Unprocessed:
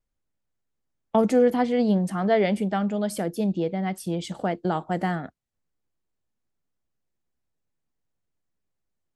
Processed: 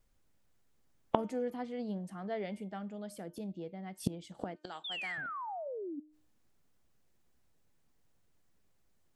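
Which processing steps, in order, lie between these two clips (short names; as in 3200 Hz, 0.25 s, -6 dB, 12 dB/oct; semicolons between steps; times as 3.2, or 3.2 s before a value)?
4.56–5.18 weighting filter ITU-R 468; 4.84–6 painted sound fall 270–3700 Hz -23 dBFS; flipped gate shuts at -25 dBFS, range -26 dB; de-hum 304.8 Hz, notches 11; gain +9 dB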